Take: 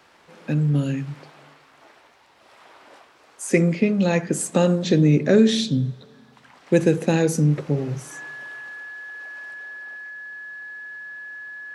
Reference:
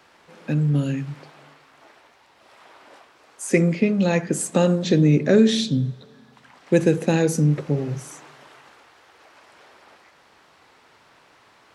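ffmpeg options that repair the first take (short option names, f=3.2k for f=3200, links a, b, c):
-af "bandreject=f=1.7k:w=30,asetnsamples=n=441:p=0,asendcmd='9.54 volume volume 3dB',volume=0dB"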